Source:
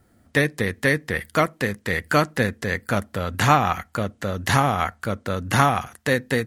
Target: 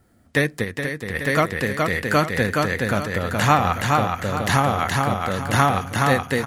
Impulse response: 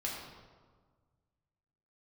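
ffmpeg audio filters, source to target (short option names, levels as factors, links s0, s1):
-filter_complex "[0:a]aecho=1:1:421|842|1263|1684:0.708|0.241|0.0818|0.0278,asplit=3[s0][s1][s2];[s0]afade=t=out:st=0.63:d=0.02[s3];[s1]acompressor=threshold=0.0562:ratio=3,afade=t=in:st=0.63:d=0.02,afade=t=out:st=1.14:d=0.02[s4];[s2]afade=t=in:st=1.14:d=0.02[s5];[s3][s4][s5]amix=inputs=3:normalize=0"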